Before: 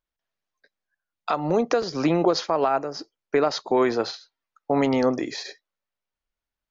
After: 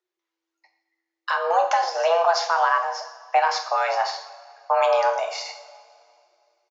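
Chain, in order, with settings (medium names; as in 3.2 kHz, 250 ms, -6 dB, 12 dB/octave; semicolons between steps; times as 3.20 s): two-slope reverb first 0.63 s, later 2.5 s, from -17 dB, DRR 3 dB; frequency shift +330 Hz; resampled via 16 kHz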